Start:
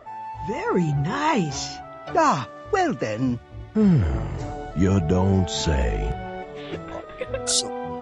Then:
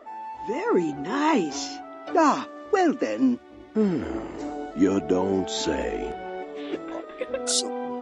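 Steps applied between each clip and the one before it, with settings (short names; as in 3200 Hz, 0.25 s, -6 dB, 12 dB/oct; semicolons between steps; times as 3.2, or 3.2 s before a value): resonant low shelf 190 Hz -13 dB, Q 3; gain -2.5 dB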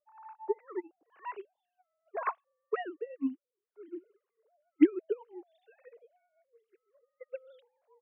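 sine-wave speech; harmonic tremolo 2 Hz, depth 70%, crossover 880 Hz; upward expander 2.5:1, over -44 dBFS; gain +2 dB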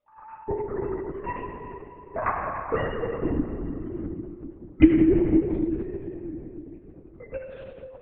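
shoebox room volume 120 m³, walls hard, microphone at 0.57 m; LPC vocoder at 8 kHz whisper; gain +4.5 dB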